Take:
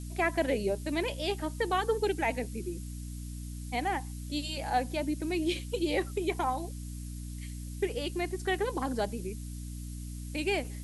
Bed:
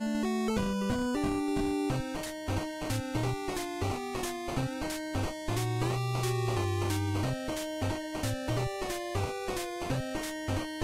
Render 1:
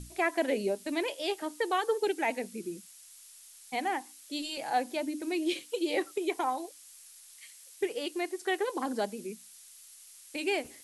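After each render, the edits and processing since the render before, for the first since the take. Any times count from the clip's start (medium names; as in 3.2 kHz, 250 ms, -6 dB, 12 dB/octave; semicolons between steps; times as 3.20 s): hum notches 60/120/180/240/300 Hz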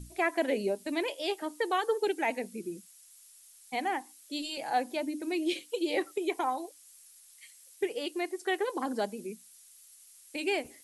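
noise reduction 6 dB, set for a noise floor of -54 dBFS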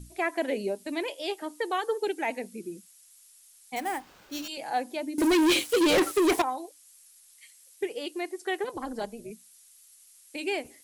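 3.76–4.48 s: sample-rate reducer 10 kHz; 5.18–6.42 s: waveshaping leveller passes 5; 8.64–9.31 s: AM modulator 240 Hz, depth 35%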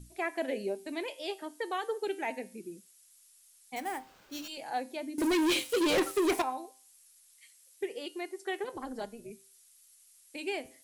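feedback comb 130 Hz, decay 0.42 s, harmonics all, mix 50%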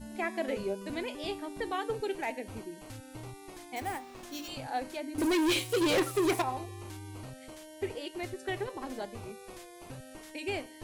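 add bed -13.5 dB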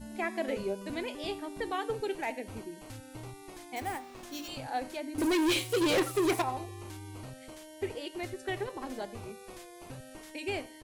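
delay 86 ms -22.5 dB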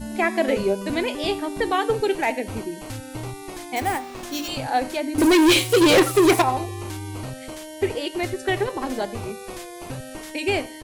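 trim +12 dB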